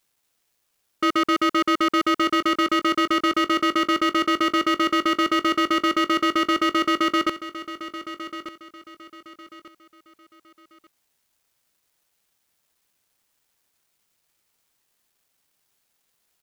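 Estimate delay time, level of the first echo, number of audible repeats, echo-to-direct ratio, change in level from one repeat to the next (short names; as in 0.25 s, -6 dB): 1.191 s, -13.0 dB, 3, -12.5 dB, -10.0 dB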